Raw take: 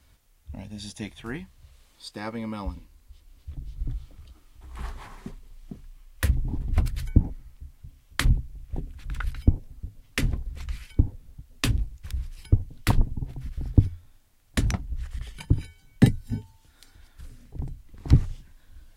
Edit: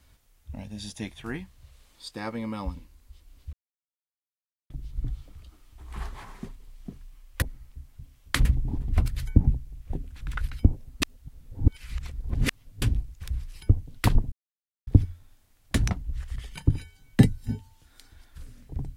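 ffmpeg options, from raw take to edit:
-filter_complex "[0:a]asplit=9[s0][s1][s2][s3][s4][s5][s6][s7][s8];[s0]atrim=end=3.53,asetpts=PTS-STARTPTS,afade=t=out:st=3.526:d=0.004:c=hsin,apad=pad_dur=1.17[s9];[s1]atrim=start=3.53:end=6.252,asetpts=PTS-STARTPTS,afade=t=in:d=0.004:c=hsin[s10];[s2]atrim=start=7.268:end=8.302[s11];[s3]atrim=start=6.248:end=7.272[s12];[s4]atrim=start=8.298:end=9.852[s13];[s5]atrim=start=9.848:end=11.652,asetpts=PTS-STARTPTS,areverse[s14];[s6]atrim=start=11.648:end=13.15,asetpts=PTS-STARTPTS,afade=t=out:st=1.498:d=0.004:c=hsin[s15];[s7]atrim=start=13.15:end=13.7,asetpts=PTS-STARTPTS,volume=0[s16];[s8]atrim=start=13.7,asetpts=PTS-STARTPTS,afade=t=in:d=0.004:c=hsin[s17];[s9][s10]concat=n=2:v=0:a=1[s18];[s18][s11]acrossfade=d=0.004:c1=hsin:c2=hsin[s19];[s19][s12]acrossfade=d=0.004:c1=hsin:c2=hsin[s20];[s20][s13]acrossfade=d=0.004:c1=hsin:c2=hsin[s21];[s21][s14]acrossfade=d=0.004:c1=hsin:c2=hsin[s22];[s15][s16][s17]concat=n=3:v=0:a=1[s23];[s22][s23]acrossfade=d=0.004:c1=hsin:c2=hsin"

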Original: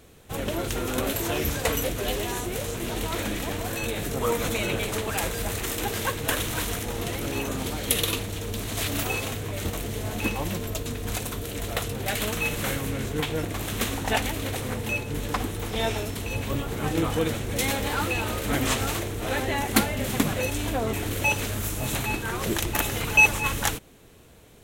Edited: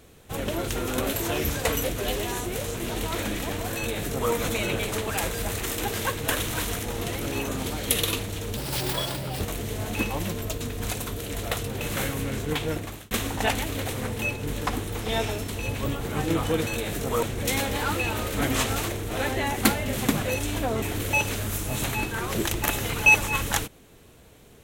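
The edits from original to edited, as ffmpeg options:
-filter_complex "[0:a]asplit=7[s0][s1][s2][s3][s4][s5][s6];[s0]atrim=end=8.574[s7];[s1]atrim=start=8.57:end=9.66,asetpts=PTS-STARTPTS,asetrate=57330,aresample=44100,atrim=end_sample=36976,asetpts=PTS-STARTPTS[s8];[s2]atrim=start=9.656:end=12.062[s9];[s3]atrim=start=12.478:end=13.78,asetpts=PTS-STARTPTS,afade=t=out:st=0.912:d=0.39[s10];[s4]atrim=start=13.78:end=17.342,asetpts=PTS-STARTPTS,afade=t=in:d=0.004:c=hsin[s11];[s5]atrim=start=3.768:end=4.332[s12];[s6]atrim=start=17.338[s13];[s7][s8]acrossfade=d=0.004:c1=hsin:c2=hsin[s14];[s14][s9]acrossfade=d=0.004:c1=hsin:c2=hsin[s15];[s10][s11]concat=n=2:v=0:a=1[s16];[s15][s16]acrossfade=d=0.004:c1=hsin:c2=hsin[s17];[s17][s12]acrossfade=d=0.004:c1=hsin:c2=hsin[s18];[s18][s13]acrossfade=d=0.004:c1=hsin:c2=hsin"

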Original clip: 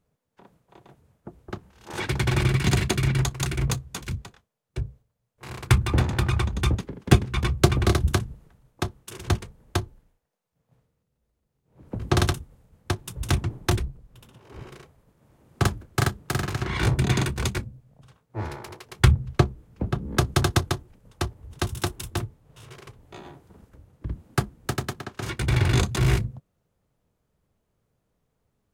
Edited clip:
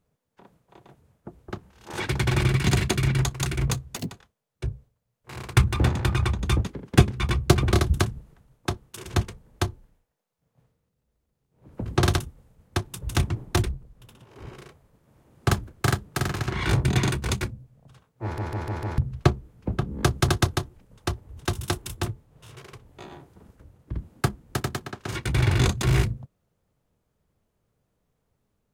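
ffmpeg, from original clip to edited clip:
-filter_complex "[0:a]asplit=8[s0][s1][s2][s3][s4][s5][s6][s7];[s0]atrim=end=3.964[s8];[s1]atrim=start=3.96:end=4.25,asetpts=PTS-STARTPTS,asetrate=84231,aresample=44100[s9];[s2]atrim=start=4.246:end=18.522[s10];[s3]atrim=start=18.368:end=18.522[s11];[s4]atrim=start=18.368:end=18.522[s12];[s5]atrim=start=18.368:end=18.522[s13];[s6]atrim=start=18.368:end=18.522[s14];[s7]atrim=start=19.118[s15];[s8][s9]acrossfade=d=0.004:c1=hsin:c2=hsin[s16];[s16][s10]acrossfade=d=0.004:c1=hsin:c2=hsin[s17];[s17][s11]acrossfade=d=0.004:c1=hsin:c2=hsin[s18];[s18][s12]acrossfade=d=0.004:c1=hsin:c2=hsin[s19];[s19][s13]acrossfade=d=0.004:c1=hsin:c2=hsin[s20];[s20][s14]acrossfade=d=0.004:c1=hsin:c2=hsin[s21];[s21][s15]acrossfade=d=0.004:c1=hsin:c2=hsin"

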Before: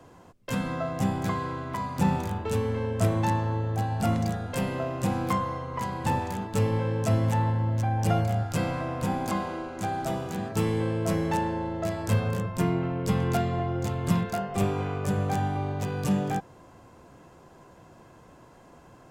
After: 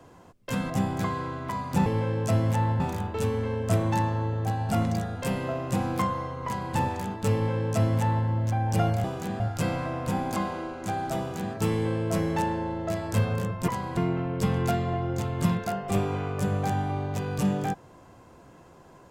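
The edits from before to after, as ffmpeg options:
-filter_complex "[0:a]asplit=8[s0][s1][s2][s3][s4][s5][s6][s7];[s0]atrim=end=0.702[s8];[s1]atrim=start=0.948:end=2.112[s9];[s2]atrim=start=6.638:end=7.582[s10];[s3]atrim=start=2.108:end=8.352[s11];[s4]atrim=start=10.128:end=10.492[s12];[s5]atrim=start=8.348:end=12.632[s13];[s6]atrim=start=5.768:end=6.062[s14];[s7]atrim=start=12.628[s15];[s8][s9]acrossfade=d=0.004:c1=hsin:c2=hsin[s16];[s16][s10]acrossfade=d=0.004:c1=hsin:c2=hsin[s17];[s17][s11]acrossfade=d=0.004:c1=hsin:c2=hsin[s18];[s18][s12]acrossfade=d=0.004:c1=hsin:c2=hsin[s19];[s19][s13]acrossfade=d=0.004:c1=hsin:c2=hsin[s20];[s20][s14]acrossfade=d=0.004:c1=hsin:c2=hsin[s21];[s21][s15]acrossfade=d=0.004:c1=hsin:c2=hsin"

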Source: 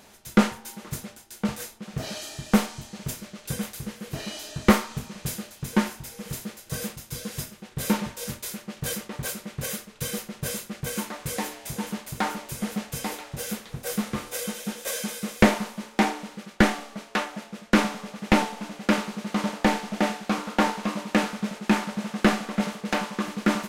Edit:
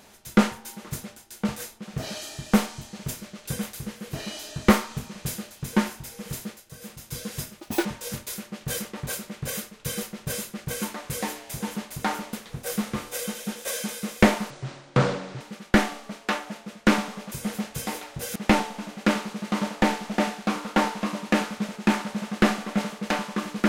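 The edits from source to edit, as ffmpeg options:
-filter_complex "[0:a]asplit=10[s0][s1][s2][s3][s4][s5][s6][s7][s8][s9];[s0]atrim=end=6.74,asetpts=PTS-STARTPTS,afade=t=out:st=6.48:d=0.26:silence=0.211349[s10];[s1]atrim=start=6.74:end=6.8,asetpts=PTS-STARTPTS,volume=0.211[s11];[s2]atrim=start=6.8:end=7.604,asetpts=PTS-STARTPTS,afade=t=in:d=0.26:silence=0.211349[s12];[s3]atrim=start=7.6:end=8.01,asetpts=PTS-STARTPTS,asetrate=71883,aresample=44100[s13];[s4]atrim=start=8.006:end=12.492[s14];[s5]atrim=start=13.528:end=15.704[s15];[s6]atrim=start=15.7:end=16.27,asetpts=PTS-STARTPTS,asetrate=27783,aresample=44100[s16];[s7]atrim=start=16.266:end=18.182[s17];[s8]atrim=start=12.488:end=13.532[s18];[s9]atrim=start=18.178[s19];[s10][s11][s12]concat=n=3:v=0:a=1[s20];[s20][s13]acrossfade=d=0.004:c1=hsin:c2=hsin[s21];[s21][s14]acrossfade=d=0.004:c1=hsin:c2=hsin[s22];[s22][s15]acrossfade=d=0.004:c1=hsin:c2=hsin[s23];[s23][s16]acrossfade=d=0.004:c1=hsin:c2=hsin[s24];[s24][s17]acrossfade=d=0.004:c1=hsin:c2=hsin[s25];[s25][s18]acrossfade=d=0.004:c1=hsin:c2=hsin[s26];[s26][s19]acrossfade=d=0.004:c1=hsin:c2=hsin"

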